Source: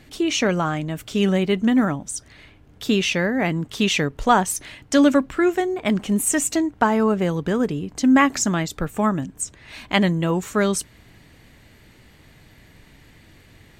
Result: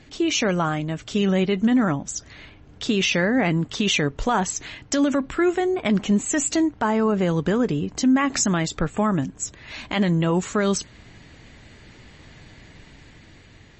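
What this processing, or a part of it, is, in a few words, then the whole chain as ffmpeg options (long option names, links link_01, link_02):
low-bitrate web radio: -filter_complex "[0:a]asettb=1/sr,asplit=3[link_01][link_02][link_03];[link_01]atrim=end=4.324[link_04];[link_02]atrim=start=4.32:end=4.82,asetpts=PTS-STARTPTS,afade=type=in:duration=0.004:curve=qsin,afade=type=out:start_time=0.496:duration=0.004:curve=qsin,bandreject=frequency=580:width=12[link_05];[link_03]atrim=start=4.816[link_06];[link_04][link_05]acrossfade=duration=0.004:curve1=hsin:curve2=qsin[link_07];[link_07][link_06]acrossfade=duration=0.004:curve1=qsin:curve2=hsin,dynaudnorm=framelen=780:gausssize=5:maxgain=11.5dB,alimiter=limit=-11.5dB:level=0:latency=1:release=61" -ar 32000 -c:a libmp3lame -b:a 32k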